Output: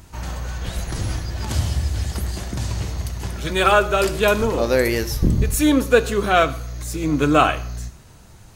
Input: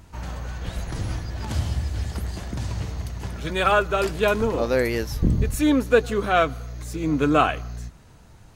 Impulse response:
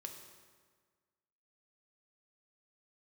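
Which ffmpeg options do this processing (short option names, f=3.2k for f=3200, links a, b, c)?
-filter_complex "[0:a]highshelf=f=4.4k:g=7.5,asplit=2[a][b];[1:a]atrim=start_sample=2205,atrim=end_sample=6174[c];[b][c]afir=irnorm=-1:irlink=0,volume=1.5dB[d];[a][d]amix=inputs=2:normalize=0,volume=-1.5dB"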